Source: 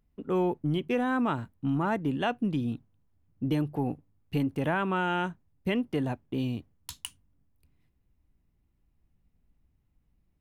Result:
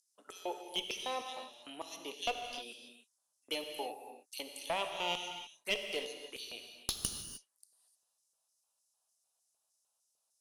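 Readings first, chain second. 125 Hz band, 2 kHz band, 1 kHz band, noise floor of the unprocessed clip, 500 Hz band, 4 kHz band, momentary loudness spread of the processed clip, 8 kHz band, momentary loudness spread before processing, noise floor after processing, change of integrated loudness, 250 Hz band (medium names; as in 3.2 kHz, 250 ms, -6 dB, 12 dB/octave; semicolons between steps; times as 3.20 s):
-26.5 dB, -7.0 dB, -8.5 dB, -72 dBFS, -9.5 dB, +5.0 dB, 12 LU, +7.5 dB, 12 LU, -82 dBFS, -9.5 dB, -23.0 dB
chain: steep low-pass 11 kHz 48 dB/octave; differentiator; touch-sensitive phaser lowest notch 350 Hz, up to 1.5 kHz, full sweep at -50.5 dBFS; LFO high-pass square 3.3 Hz 540–5600 Hz; one-sided clip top -46 dBFS; gated-style reverb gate 330 ms flat, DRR 4.5 dB; trim +14.5 dB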